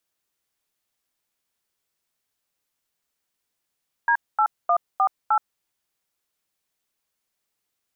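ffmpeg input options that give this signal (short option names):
-f lavfi -i "aevalsrc='0.119*clip(min(mod(t,0.306),0.075-mod(t,0.306))/0.002,0,1)*(eq(floor(t/0.306),0)*(sin(2*PI*941*mod(t,0.306))+sin(2*PI*1633*mod(t,0.306)))+eq(floor(t/0.306),1)*(sin(2*PI*852*mod(t,0.306))+sin(2*PI*1336*mod(t,0.306)))+eq(floor(t/0.306),2)*(sin(2*PI*697*mod(t,0.306))+sin(2*PI*1209*mod(t,0.306)))+eq(floor(t/0.306),3)*(sin(2*PI*770*mod(t,0.306))+sin(2*PI*1209*mod(t,0.306)))+eq(floor(t/0.306),4)*(sin(2*PI*852*mod(t,0.306))+sin(2*PI*1336*mod(t,0.306))))':d=1.53:s=44100"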